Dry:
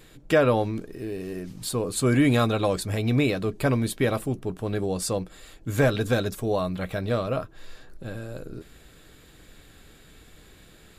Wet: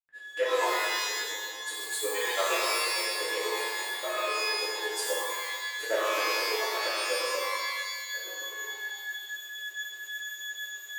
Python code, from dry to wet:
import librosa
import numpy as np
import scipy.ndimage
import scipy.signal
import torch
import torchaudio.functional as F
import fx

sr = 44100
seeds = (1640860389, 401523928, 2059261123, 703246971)

y = fx.brickwall_highpass(x, sr, low_hz=390.0)
y = fx.pitch_keep_formants(y, sr, semitones=-3.5)
y = y + 10.0 ** (-33.0 / 20.0) * np.sin(2.0 * np.pi * 1700.0 * np.arange(len(y)) / sr)
y = fx.granulator(y, sr, seeds[0], grain_ms=100.0, per_s=8.5, spray_ms=100.0, spread_st=0)
y = fx.rev_shimmer(y, sr, seeds[1], rt60_s=1.3, semitones=12, shimmer_db=-2, drr_db=-7.0)
y = y * librosa.db_to_amplitude(-6.5)